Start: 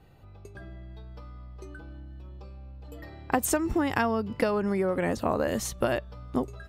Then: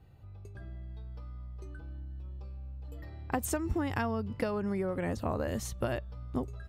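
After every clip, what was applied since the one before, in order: peaking EQ 82 Hz +11 dB 1.6 oct; trim -7.5 dB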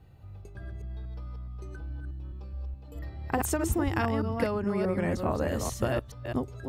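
chunks repeated in reverse 211 ms, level -4 dB; trim +3 dB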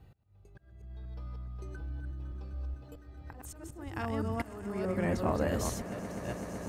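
slow attack 681 ms; echo with a slow build-up 127 ms, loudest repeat 8, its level -17.5 dB; trim -1.5 dB

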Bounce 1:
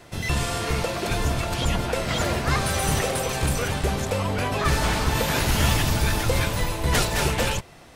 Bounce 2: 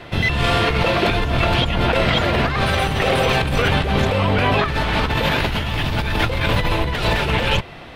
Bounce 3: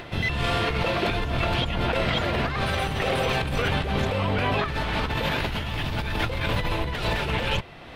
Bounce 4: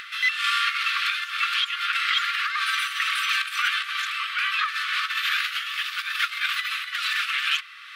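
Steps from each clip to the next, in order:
compressor with a negative ratio -26 dBFS, ratio -1; resonant high shelf 4.8 kHz -13 dB, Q 1.5; trim +7.5 dB
upward compressor, threshold -27 dBFS; trim -7 dB
brick-wall FIR high-pass 1.1 kHz; trim +5.5 dB

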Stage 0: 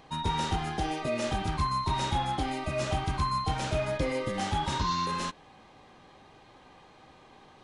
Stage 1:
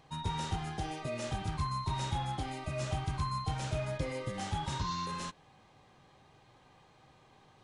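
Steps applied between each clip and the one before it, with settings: graphic EQ 125/250/8000 Hz +8/-3/+4 dB; trim -7.5 dB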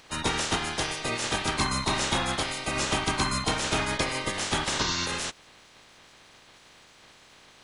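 spectral peaks clipped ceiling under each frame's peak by 23 dB; trim +7.5 dB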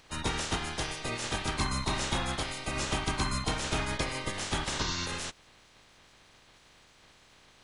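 bass shelf 99 Hz +9.5 dB; trim -5.5 dB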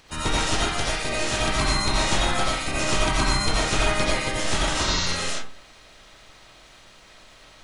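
reverberation RT60 0.40 s, pre-delay 45 ms, DRR -4 dB; trim +4 dB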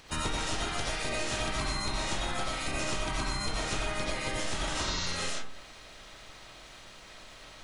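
compression 6:1, threshold -29 dBFS, peak gain reduction 12.5 dB

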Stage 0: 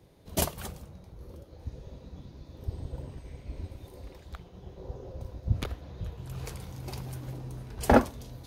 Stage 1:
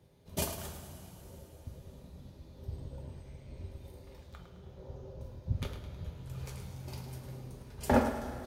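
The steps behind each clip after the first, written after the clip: reverse; upward compressor, threshold -42 dBFS; reverse; feedback delay 106 ms, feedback 42%, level -10 dB; two-slope reverb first 0.27 s, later 4.1 s, from -19 dB, DRR 1.5 dB; trim -8 dB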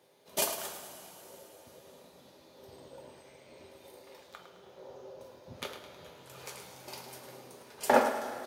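high-pass 460 Hz 12 dB/octave; trim +6 dB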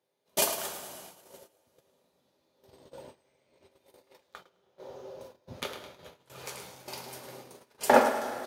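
gate -50 dBFS, range -19 dB; trim +3.5 dB

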